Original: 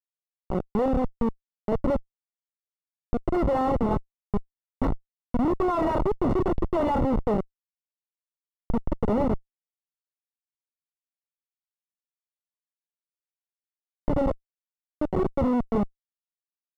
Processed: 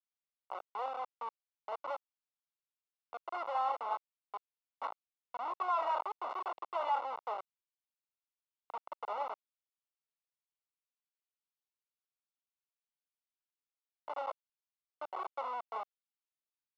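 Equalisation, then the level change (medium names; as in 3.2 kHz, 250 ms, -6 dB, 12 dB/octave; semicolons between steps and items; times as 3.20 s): high-pass 830 Hz 24 dB/octave; low-pass 3.8 kHz 12 dB/octave; peaking EQ 1.8 kHz -14 dB 0.25 oct; -2.0 dB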